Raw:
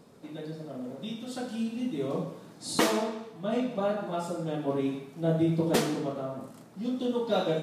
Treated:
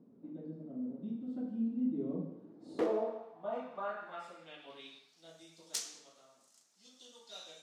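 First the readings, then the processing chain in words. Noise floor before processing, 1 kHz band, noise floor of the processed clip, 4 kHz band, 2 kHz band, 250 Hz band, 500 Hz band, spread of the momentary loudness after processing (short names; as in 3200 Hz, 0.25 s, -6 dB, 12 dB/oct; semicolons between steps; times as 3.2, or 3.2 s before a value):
-51 dBFS, -10.5 dB, -68 dBFS, -11.0 dB, -13.5 dB, -9.0 dB, -10.5 dB, 22 LU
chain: de-hum 74.14 Hz, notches 36; wrapped overs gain 15 dB; band-pass sweep 250 Hz -> 6300 Hz, 2.31–5.4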